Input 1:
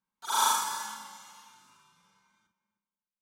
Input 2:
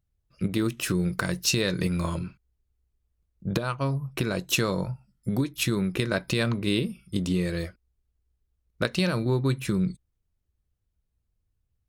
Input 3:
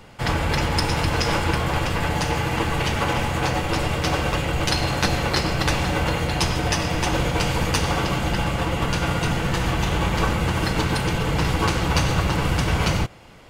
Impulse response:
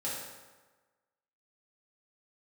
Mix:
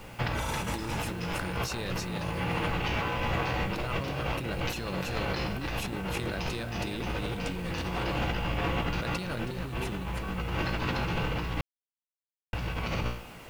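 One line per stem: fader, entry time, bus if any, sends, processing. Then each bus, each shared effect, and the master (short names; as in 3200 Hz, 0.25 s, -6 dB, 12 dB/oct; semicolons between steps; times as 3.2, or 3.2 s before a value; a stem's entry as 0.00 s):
-1.5 dB, 0.10 s, no send, no echo send, compressor, threshold -29 dBFS, peak gain reduction 8.5 dB
-2.0 dB, 0.20 s, no send, echo send -5.5 dB, dry
+2.0 dB, 0.00 s, muted 11.61–12.53, no send, no echo send, running mean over 5 samples; bell 2600 Hz +5.5 dB 0.22 oct; resonator 59 Hz, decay 0.49 s, harmonics all, mix 80%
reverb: off
echo: echo 0.322 s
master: negative-ratio compressor -32 dBFS, ratio -1; bit-crush 9-bit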